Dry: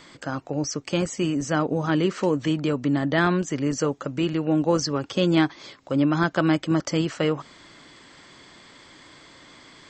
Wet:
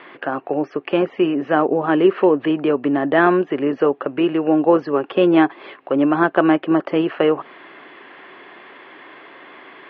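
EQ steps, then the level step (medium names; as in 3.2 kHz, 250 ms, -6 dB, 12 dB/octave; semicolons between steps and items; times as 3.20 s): dynamic bell 2.2 kHz, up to -6 dB, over -39 dBFS, Q 0.7; distance through air 310 m; cabinet simulation 320–3300 Hz, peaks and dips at 390 Hz +8 dB, 740 Hz +6 dB, 1.1 kHz +4 dB, 1.7 kHz +6 dB, 2.7 kHz +8 dB; +7.5 dB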